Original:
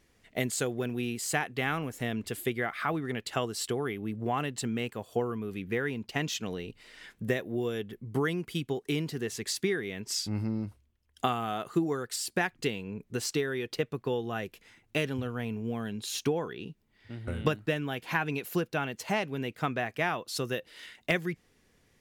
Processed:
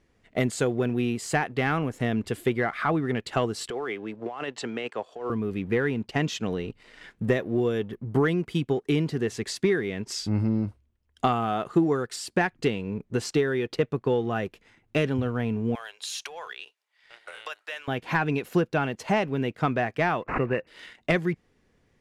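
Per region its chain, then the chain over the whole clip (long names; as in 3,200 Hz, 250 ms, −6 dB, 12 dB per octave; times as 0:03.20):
0:03.70–0:05.30: high-pass filter 150 Hz + three-way crossover with the lows and the highs turned down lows −15 dB, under 400 Hz, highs −22 dB, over 7,500 Hz + compressor whose output falls as the input rises −38 dBFS
0:15.75–0:17.88: high-shelf EQ 2,300 Hz +8.5 dB + downward compressor 4 to 1, threshold −30 dBFS + Bessel high-pass filter 940 Hz, order 6
0:20.22–0:20.67: high-shelf EQ 5,200 Hz +3.5 dB + bad sample-rate conversion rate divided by 8×, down none, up filtered
whole clip: leveller curve on the samples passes 1; low-pass filter 9,900 Hz 12 dB per octave; high-shelf EQ 2,500 Hz −9.5 dB; level +3.5 dB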